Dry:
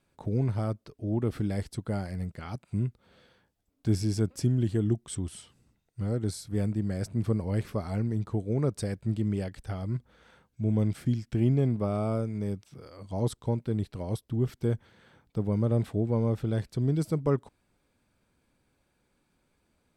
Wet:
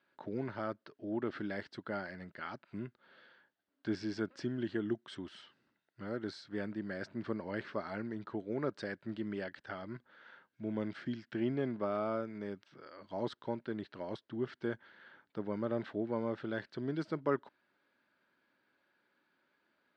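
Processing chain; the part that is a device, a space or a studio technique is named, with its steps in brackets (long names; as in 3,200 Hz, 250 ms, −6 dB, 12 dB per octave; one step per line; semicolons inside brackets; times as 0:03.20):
phone earpiece (loudspeaker in its box 440–3,800 Hz, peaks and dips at 470 Hz −9 dB, 750 Hz −8 dB, 1,100 Hz −4 dB, 1,600 Hz +5 dB, 2,400 Hz −7 dB, 3,500 Hz −4 dB)
level +3 dB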